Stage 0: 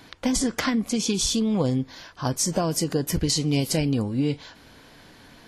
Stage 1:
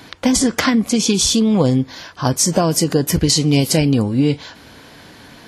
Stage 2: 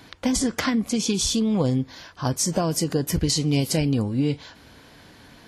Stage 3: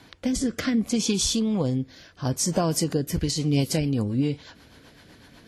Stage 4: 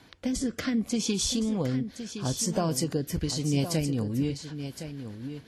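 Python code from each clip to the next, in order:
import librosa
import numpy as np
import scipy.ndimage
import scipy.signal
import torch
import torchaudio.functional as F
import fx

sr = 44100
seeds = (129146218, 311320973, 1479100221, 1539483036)

y1 = scipy.signal.sosfilt(scipy.signal.butter(2, 53.0, 'highpass', fs=sr, output='sos'), x)
y1 = F.gain(torch.from_numpy(y1), 8.5).numpy()
y2 = fx.low_shelf(y1, sr, hz=71.0, db=8.0)
y2 = F.gain(torch.from_numpy(y2), -8.0).numpy()
y3 = fx.rotary_switch(y2, sr, hz=0.65, then_hz=8.0, switch_at_s=2.8)
y4 = y3 + 10.0 ** (-10.0 / 20.0) * np.pad(y3, (int(1065 * sr / 1000.0), 0))[:len(y3)]
y4 = F.gain(torch.from_numpy(y4), -4.0).numpy()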